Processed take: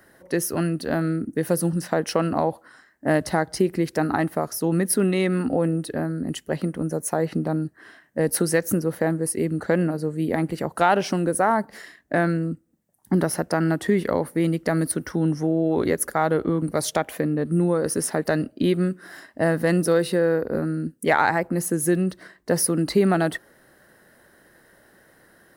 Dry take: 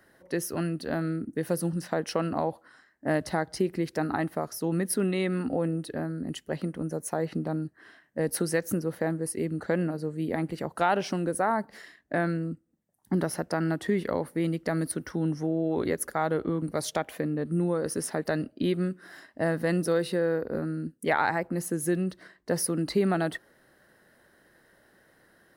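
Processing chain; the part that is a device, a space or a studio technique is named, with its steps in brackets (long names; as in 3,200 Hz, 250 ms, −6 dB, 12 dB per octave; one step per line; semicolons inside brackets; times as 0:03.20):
exciter from parts (in parallel at −6 dB: high-pass filter 2,400 Hz 6 dB per octave + soft clipping −33.5 dBFS, distortion −8 dB + high-pass filter 4,600 Hz 12 dB per octave)
on the sum: level +6 dB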